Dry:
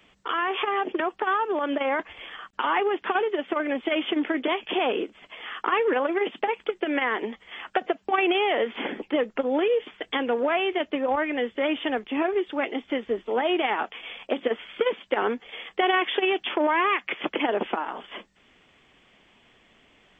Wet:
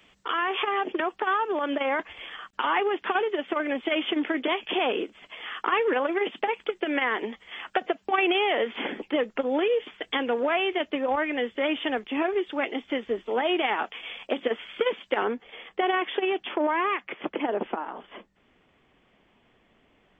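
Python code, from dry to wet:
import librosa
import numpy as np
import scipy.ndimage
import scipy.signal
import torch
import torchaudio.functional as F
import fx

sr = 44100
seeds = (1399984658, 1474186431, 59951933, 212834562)

y = fx.high_shelf(x, sr, hz=2100.0, db=fx.steps((0.0, 3.5), (15.23, -6.5), (17.03, -11.5)))
y = F.gain(torch.from_numpy(y), -1.5).numpy()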